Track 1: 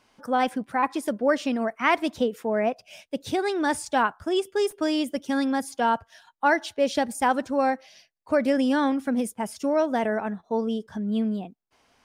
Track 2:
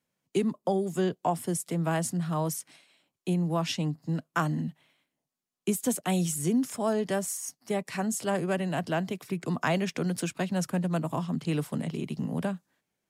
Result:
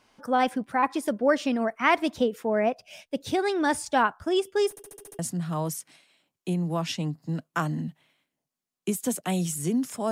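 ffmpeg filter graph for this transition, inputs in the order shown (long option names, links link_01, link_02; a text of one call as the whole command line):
ffmpeg -i cue0.wav -i cue1.wav -filter_complex "[0:a]apad=whole_dur=10.11,atrim=end=10.11,asplit=7[link_01][link_02][link_03][link_04][link_05][link_06][link_07];[link_01]atrim=end=4.772[link_08];[link_02]atrim=start=4.698:end=4.772[link_09];[link_03]atrim=start=4.698:end=4.772[link_10];[link_04]atrim=start=4.698:end=4.772[link_11];[link_05]atrim=start=4.698:end=4.772[link_12];[link_06]atrim=start=4.698:end=4.772[link_13];[link_07]atrim=start=4.698:end=4.772[link_14];[1:a]atrim=start=1.988:end=6.91[link_15];[link_08][link_09]acrossfade=duration=0.004:curve1=hsin:curve2=hsin[link_16];[link_16][link_10]acrossfade=duration=0.004:curve1=hsin:curve2=hsin[link_17];[link_17][link_11]acrossfade=duration=0.004:curve1=hsin:curve2=hsin[link_18];[link_18][link_12]acrossfade=duration=0.004:curve1=hsin:curve2=hsin[link_19];[link_19][link_13]acrossfade=duration=0.004:curve1=hsin:curve2=hsin[link_20];[link_20][link_14]acrossfade=duration=0.004:curve1=hsin:curve2=hsin[link_21];[link_21][link_15]acrossfade=duration=0.004:curve1=hsin:curve2=hsin" out.wav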